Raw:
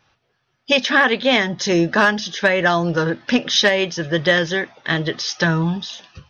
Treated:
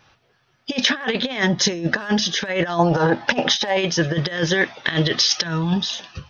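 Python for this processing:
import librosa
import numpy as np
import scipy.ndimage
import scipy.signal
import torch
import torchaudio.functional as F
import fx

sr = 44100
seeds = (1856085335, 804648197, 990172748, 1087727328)

y = fx.peak_eq(x, sr, hz=3500.0, db=6.0, octaves=1.9, at=(4.61, 5.74))
y = fx.over_compress(y, sr, threshold_db=-21.0, ratio=-0.5)
y = fx.peak_eq(y, sr, hz=810.0, db=15.0, octaves=0.64, at=(2.79, 3.77))
y = y * 10.0 ** (1.5 / 20.0)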